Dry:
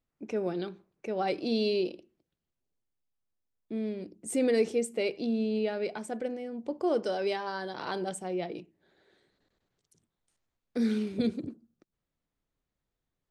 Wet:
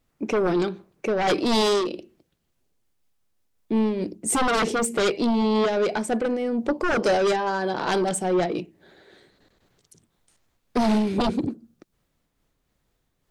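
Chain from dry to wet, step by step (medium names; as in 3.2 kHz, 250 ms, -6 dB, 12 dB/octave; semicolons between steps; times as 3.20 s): 7.31–7.88 s: treble shelf 2.2 kHz -7 dB; sine folder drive 12 dB, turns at -15.5 dBFS; random flutter of the level, depth 55%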